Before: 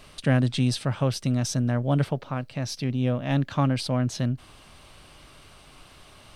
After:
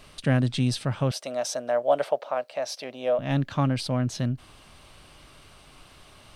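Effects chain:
0:01.11–0:03.19: high-pass with resonance 610 Hz, resonance Q 4
level −1 dB

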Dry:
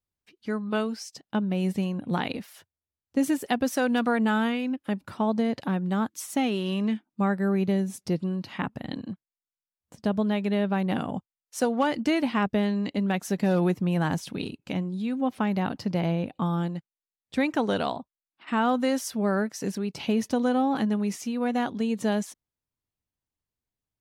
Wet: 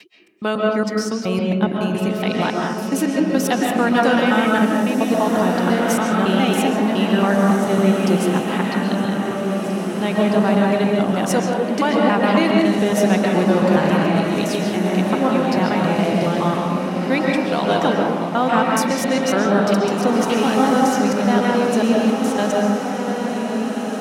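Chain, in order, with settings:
slices reordered back to front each 139 ms, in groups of 3
high-pass filter 270 Hz 6 dB per octave
in parallel at +2.5 dB: brickwall limiter −21.5 dBFS, peak gain reduction 8 dB
on the sum: feedback delay with all-pass diffusion 1,767 ms, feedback 52%, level −6 dB
convolution reverb RT60 1.1 s, pre-delay 95 ms, DRR −1 dB
level +1.5 dB

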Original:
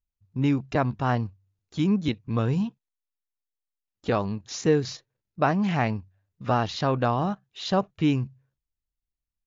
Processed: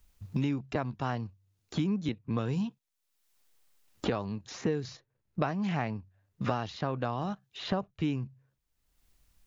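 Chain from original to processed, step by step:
multiband upward and downward compressor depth 100%
level −8 dB

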